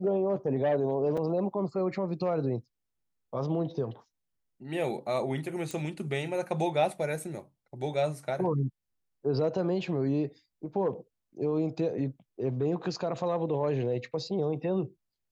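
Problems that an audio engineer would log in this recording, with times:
1.17 gap 4.9 ms
5.71 pop

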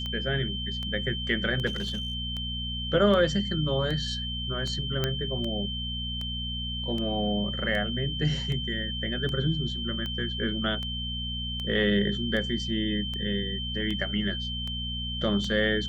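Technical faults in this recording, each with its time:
hum 60 Hz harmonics 4 -35 dBFS
tick 78 rpm -22 dBFS
tone 3100 Hz -33 dBFS
1.66–2.15 clipped -26.5 dBFS
5.04 pop -12 dBFS

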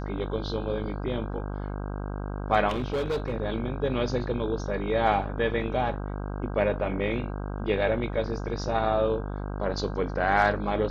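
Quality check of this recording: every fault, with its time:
buzz 50 Hz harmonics 32 -33 dBFS
2.68–3.34 clipped -24 dBFS

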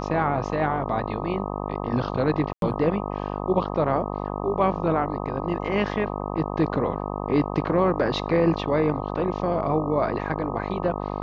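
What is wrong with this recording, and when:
buzz 50 Hz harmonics 25 -30 dBFS
2.53–2.62 gap 92 ms

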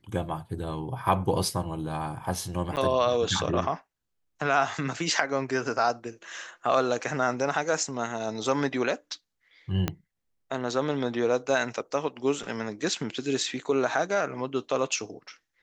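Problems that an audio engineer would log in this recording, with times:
2.76–2.77 gap 9 ms
9.88 pop -12 dBFS

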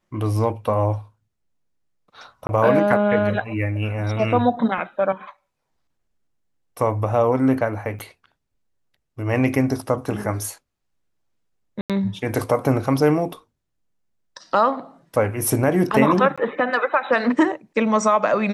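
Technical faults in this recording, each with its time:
2.47–2.49 gap 20 ms
7.99–8 gap 8.3 ms
11.81–11.9 gap 87 ms
16.36–16.38 gap 16 ms

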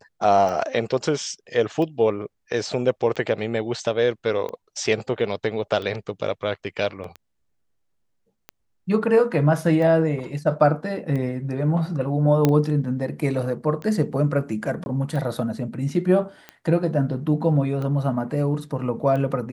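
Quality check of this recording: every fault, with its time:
tick 45 rpm -20 dBFS
7.04 gap 2.7 ms
12.45 pop -5 dBFS
14.84–14.86 gap 21 ms

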